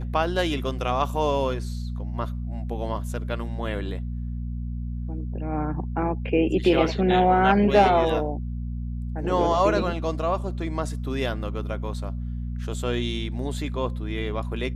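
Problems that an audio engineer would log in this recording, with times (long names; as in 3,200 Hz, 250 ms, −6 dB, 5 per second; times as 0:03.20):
mains hum 60 Hz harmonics 4 −30 dBFS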